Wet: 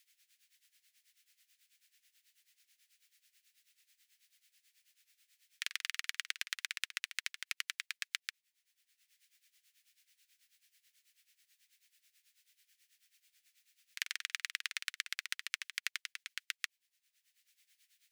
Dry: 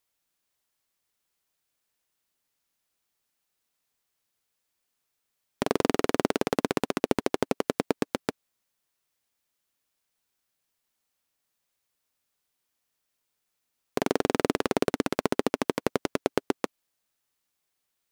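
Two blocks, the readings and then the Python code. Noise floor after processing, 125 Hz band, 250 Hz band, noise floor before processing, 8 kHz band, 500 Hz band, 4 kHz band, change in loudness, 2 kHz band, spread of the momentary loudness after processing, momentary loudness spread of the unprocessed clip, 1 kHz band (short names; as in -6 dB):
under -85 dBFS, under -40 dB, under -40 dB, -81 dBFS, -3.0 dB, under -40 dB, -1.0 dB, -11.0 dB, -2.5 dB, 5 LU, 6 LU, -24.0 dB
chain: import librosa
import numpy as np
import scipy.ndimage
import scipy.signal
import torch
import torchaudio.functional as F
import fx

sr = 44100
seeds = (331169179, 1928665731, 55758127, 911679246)

y = scipy.signal.sosfilt(scipy.signal.butter(6, 1800.0, 'highpass', fs=sr, output='sos'), x)
y = fx.high_shelf(y, sr, hz=6200.0, db=-7.0)
y = y * (1.0 - 0.81 / 2.0 + 0.81 / 2.0 * np.cos(2.0 * np.pi * 9.2 * (np.arange(len(y)) / sr)))
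y = fx.band_squash(y, sr, depth_pct=40)
y = y * librosa.db_to_amplitude(4.5)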